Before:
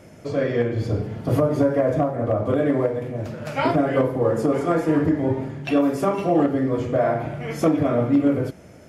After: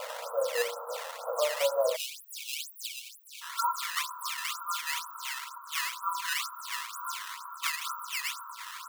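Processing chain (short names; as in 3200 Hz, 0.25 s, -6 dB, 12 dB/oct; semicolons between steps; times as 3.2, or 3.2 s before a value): delta modulation 32 kbps, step -22.5 dBFS; rippled Chebyshev low-pass 1400 Hz, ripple 6 dB; tilt +1.5 dB/oct; decimation with a swept rate 11×, swing 160% 2.1 Hz; brick-wall FIR high-pass 470 Hz, from 1.95 s 2200 Hz, from 3.41 s 930 Hz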